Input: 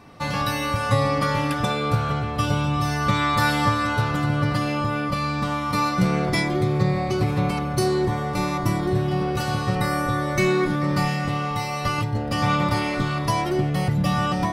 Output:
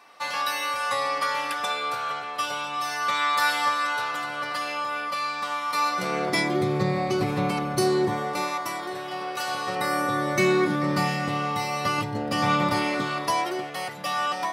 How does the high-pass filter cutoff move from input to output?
0:05.73 790 Hz
0:06.57 190 Hz
0:08.10 190 Hz
0:08.59 690 Hz
0:09.41 690 Hz
0:10.28 190 Hz
0:12.74 190 Hz
0:13.72 670 Hz

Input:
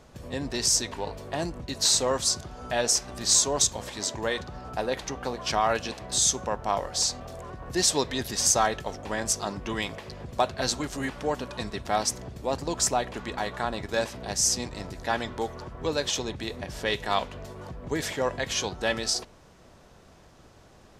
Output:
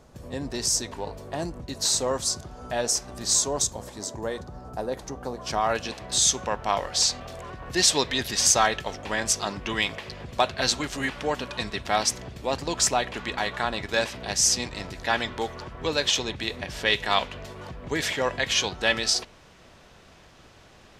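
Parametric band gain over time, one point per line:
parametric band 2,700 Hz 1.9 octaves
0:03.46 −4 dB
0:03.91 −11.5 dB
0:05.29 −11.5 dB
0:05.70 0 dB
0:06.51 +8 dB

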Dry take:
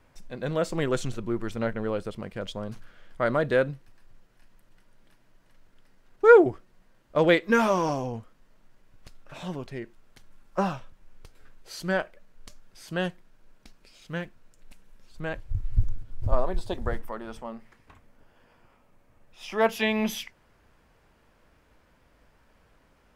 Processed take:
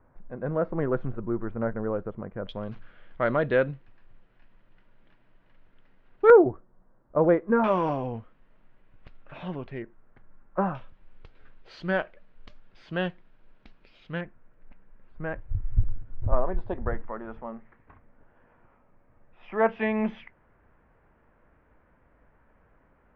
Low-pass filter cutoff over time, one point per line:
low-pass filter 24 dB per octave
1,500 Hz
from 0:02.49 3,200 Hz
from 0:06.30 1,300 Hz
from 0:07.64 3,000 Hz
from 0:09.82 1,800 Hz
from 0:10.75 3,500 Hz
from 0:14.21 2,000 Hz

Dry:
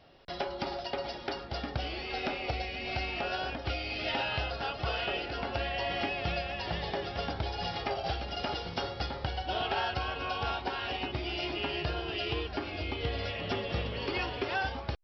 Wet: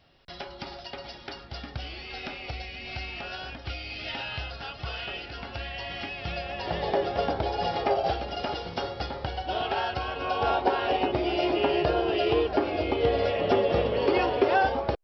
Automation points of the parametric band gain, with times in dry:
parametric band 520 Hz 2.3 octaves
0:06.16 −6.5 dB
0:06.43 +1.5 dB
0:06.89 +11 dB
0:07.98 +11 dB
0:08.47 +4.5 dB
0:10.12 +4.5 dB
0:10.55 +14.5 dB

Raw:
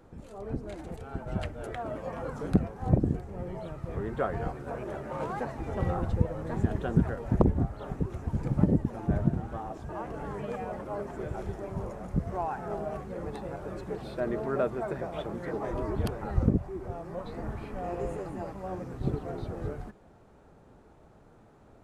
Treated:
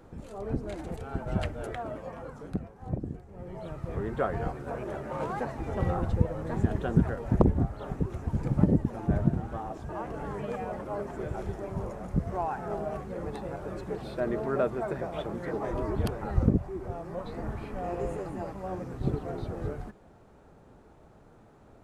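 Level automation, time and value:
0:01.55 +3 dB
0:02.54 −9 dB
0:03.25 −9 dB
0:03.72 +1 dB

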